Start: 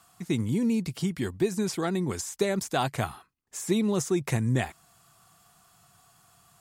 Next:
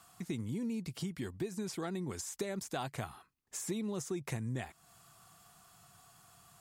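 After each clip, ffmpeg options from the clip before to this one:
-af "acompressor=threshold=-39dB:ratio=2.5,volume=-1dB"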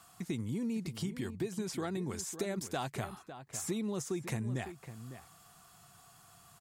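-filter_complex "[0:a]asplit=2[a][b];[b]adelay=553.9,volume=-11dB,highshelf=f=4k:g=-12.5[c];[a][c]amix=inputs=2:normalize=0,volume=1.5dB"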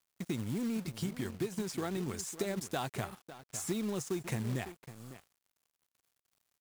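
-af "acrusher=bits=4:mode=log:mix=0:aa=0.000001,aeval=exprs='sgn(val(0))*max(abs(val(0))-0.00251,0)':c=same,volume=1.5dB"

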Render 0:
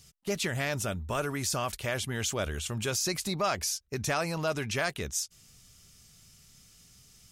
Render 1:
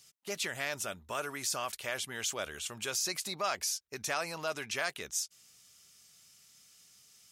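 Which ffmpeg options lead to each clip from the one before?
-af "highpass=f=710:p=1,volume=-2dB"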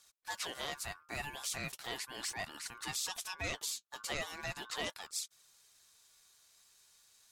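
-af "flanger=delay=0.1:depth=9.5:regen=48:speed=0.38:shape=triangular,aeval=exprs='val(0)*sin(2*PI*1300*n/s)':c=same,volume=2dB"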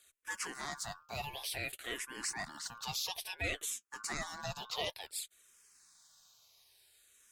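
-filter_complex "[0:a]asplit=2[a][b];[b]afreqshift=-0.57[c];[a][c]amix=inputs=2:normalize=1,volume=3.5dB"

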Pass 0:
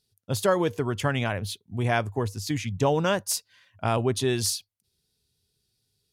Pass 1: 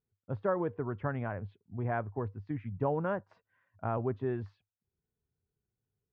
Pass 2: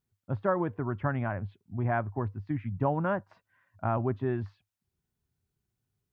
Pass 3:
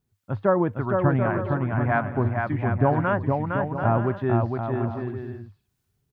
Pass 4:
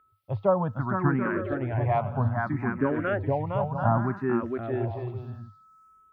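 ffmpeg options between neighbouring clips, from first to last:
-af "lowpass=f=1.6k:w=0.5412,lowpass=f=1.6k:w=1.3066,volume=-8dB"
-af "equalizer=f=460:w=4.9:g=-11,volume=5dB"
-filter_complex "[0:a]acrossover=split=840[a][b];[a]aeval=exprs='val(0)*(1-0.5/2+0.5/2*cos(2*PI*1.8*n/s))':c=same[c];[b]aeval=exprs='val(0)*(1-0.5/2-0.5/2*cos(2*PI*1.8*n/s))':c=same[d];[c][d]amix=inputs=2:normalize=0,aecho=1:1:460|736|901.6|1001|1061:0.631|0.398|0.251|0.158|0.1,volume=8.5dB"
-filter_complex "[0:a]aeval=exprs='val(0)+0.002*sin(2*PI*1300*n/s)':c=same,asplit=2[a][b];[b]afreqshift=0.64[c];[a][c]amix=inputs=2:normalize=1"

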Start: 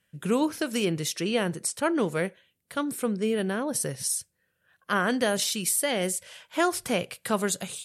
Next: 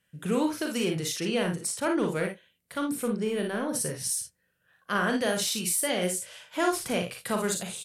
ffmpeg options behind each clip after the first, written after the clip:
-filter_complex "[0:a]asplit=2[a][b];[b]asoftclip=type=tanh:threshold=-26dB,volume=-7dB[c];[a][c]amix=inputs=2:normalize=0,aecho=1:1:39|56|80:0.447|0.501|0.168,volume=-5dB"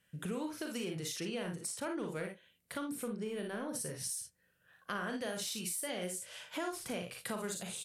-af "acompressor=threshold=-40dB:ratio=3"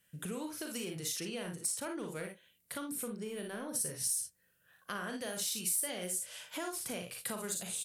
-af "crystalizer=i=1.5:c=0,volume=-2dB"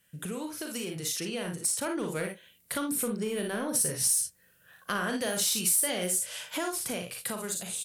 -filter_complex "[0:a]dynaudnorm=f=300:g=11:m=5.5dB,asplit=2[a][b];[b]volume=29.5dB,asoftclip=hard,volume=-29.5dB,volume=-5dB[c];[a][c]amix=inputs=2:normalize=0"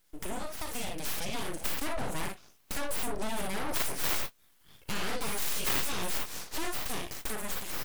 -af "aeval=exprs='abs(val(0))':c=same,aeval=exprs='0.188*(cos(1*acos(clip(val(0)/0.188,-1,1)))-cos(1*PI/2))+0.0596*(cos(3*acos(clip(val(0)/0.188,-1,1)))-cos(3*PI/2))+0.0188*(cos(4*acos(clip(val(0)/0.188,-1,1)))-cos(4*PI/2))+0.0188*(cos(7*acos(clip(val(0)/0.188,-1,1)))-cos(7*PI/2))+0.00841*(cos(8*acos(clip(val(0)/0.188,-1,1)))-cos(8*PI/2))':c=same,volume=4.5dB"

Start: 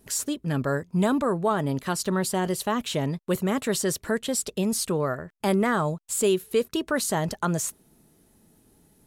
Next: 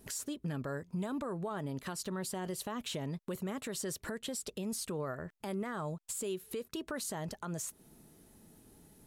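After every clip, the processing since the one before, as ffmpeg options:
-af "acompressor=threshold=-32dB:ratio=4,alimiter=level_in=5.5dB:limit=-24dB:level=0:latency=1:release=182,volume=-5.5dB"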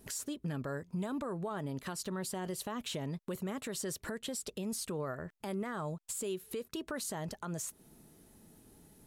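-af anull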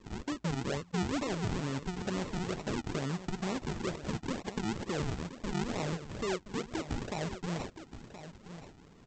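-af "aresample=16000,acrusher=samples=20:mix=1:aa=0.000001:lfo=1:lforange=20:lforate=2.2,aresample=44100,aecho=1:1:1023:0.251,volume=3.5dB"

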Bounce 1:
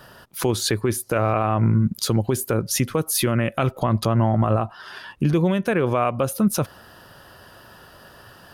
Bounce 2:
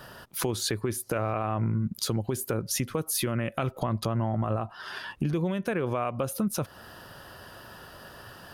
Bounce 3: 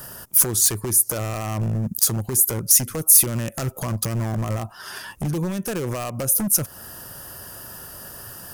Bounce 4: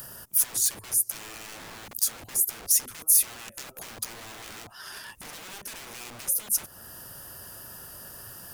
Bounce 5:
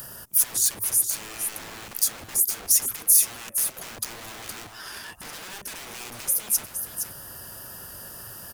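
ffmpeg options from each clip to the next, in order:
-af "acompressor=threshold=-29dB:ratio=2.5"
-af "aeval=exprs='0.0668*(abs(mod(val(0)/0.0668+3,4)-2)-1)':c=same,lowshelf=f=260:g=5,aexciter=amount=7.5:drive=3.2:freq=5.6k,volume=1.5dB"
-filter_complex "[0:a]acrossover=split=1900[a][b];[a]aeval=exprs='(mod(42.2*val(0)+1,2)-1)/42.2':c=same[c];[b]acompressor=mode=upward:threshold=-33dB:ratio=2.5[d];[c][d]amix=inputs=2:normalize=0,volume=-6.5dB"
-af "aecho=1:1:466:0.398,volume=2.5dB"

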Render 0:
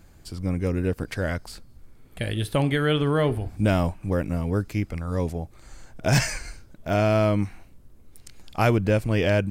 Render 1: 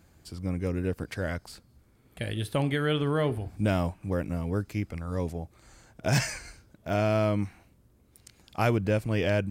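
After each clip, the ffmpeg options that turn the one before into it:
-af "highpass=56,volume=-4.5dB"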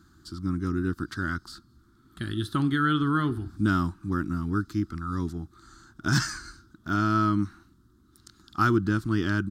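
-af "firequalizer=gain_entry='entry(130,0);entry(340,8);entry(500,-23);entry(1300,13);entry(2300,-15);entry(3600,5);entry(9500,-4)':delay=0.05:min_phase=1"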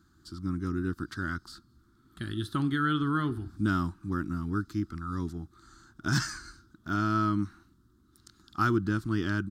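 -af "dynaudnorm=f=150:g=3:m=3dB,volume=-6.5dB"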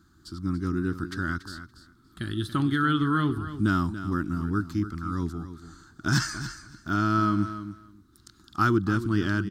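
-af "aecho=1:1:284|568:0.251|0.0377,volume=3.5dB"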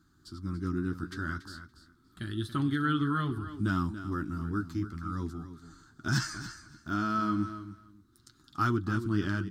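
-af "flanger=delay=7.2:depth=6.6:regen=-39:speed=0.35:shape=sinusoidal,volume=-1.5dB"

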